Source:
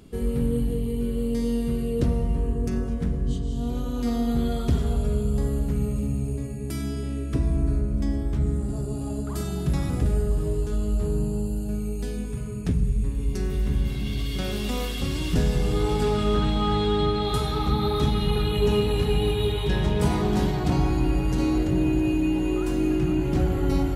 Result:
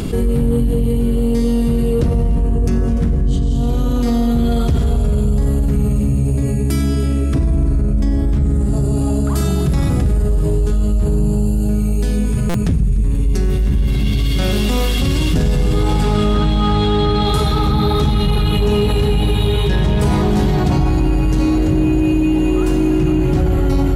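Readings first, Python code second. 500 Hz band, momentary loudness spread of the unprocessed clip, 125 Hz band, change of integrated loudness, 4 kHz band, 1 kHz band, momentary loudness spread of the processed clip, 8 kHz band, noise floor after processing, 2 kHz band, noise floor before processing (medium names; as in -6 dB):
+6.5 dB, 6 LU, +9.5 dB, +9.0 dB, +8.0 dB, +7.5 dB, 2 LU, +8.5 dB, -16 dBFS, +7.5 dB, -30 dBFS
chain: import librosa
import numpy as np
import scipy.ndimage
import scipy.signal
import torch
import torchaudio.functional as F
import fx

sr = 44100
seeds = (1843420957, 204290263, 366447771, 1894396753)

p1 = 10.0 ** (-23.0 / 20.0) * np.tanh(x / 10.0 ** (-23.0 / 20.0))
p2 = x + (p1 * 10.0 ** (-3.5 / 20.0))
p3 = fx.low_shelf(p2, sr, hz=200.0, db=4.5)
p4 = fx.hum_notches(p3, sr, base_hz=60, count=7)
p5 = p4 + fx.echo_single(p4, sr, ms=295, db=-17.0, dry=0)
p6 = fx.buffer_glitch(p5, sr, at_s=(12.49,), block=256, repeats=8)
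y = fx.env_flatten(p6, sr, amount_pct=70)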